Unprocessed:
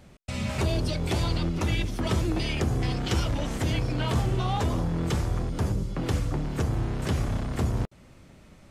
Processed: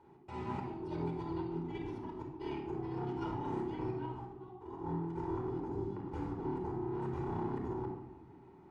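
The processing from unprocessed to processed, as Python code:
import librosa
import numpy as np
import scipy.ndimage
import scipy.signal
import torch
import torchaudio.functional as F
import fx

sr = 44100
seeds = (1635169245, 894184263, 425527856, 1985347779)

y = fx.double_bandpass(x, sr, hz=560.0, octaves=1.2)
y = fx.over_compress(y, sr, threshold_db=-44.0, ratio=-0.5)
y = fx.room_shoebox(y, sr, seeds[0], volume_m3=3700.0, walls='furnished', distance_m=4.7)
y = y * 10.0 ** (-1.0 / 20.0)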